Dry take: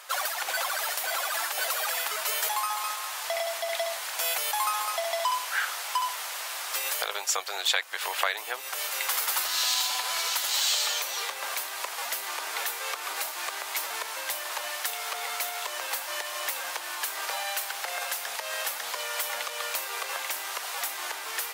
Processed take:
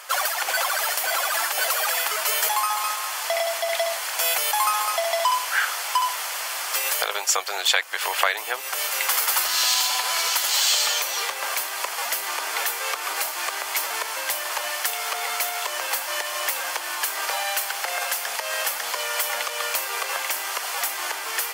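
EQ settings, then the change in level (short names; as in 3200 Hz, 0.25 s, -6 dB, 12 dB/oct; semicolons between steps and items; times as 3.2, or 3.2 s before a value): HPF 130 Hz; notch 3800 Hz, Q 12; +6.0 dB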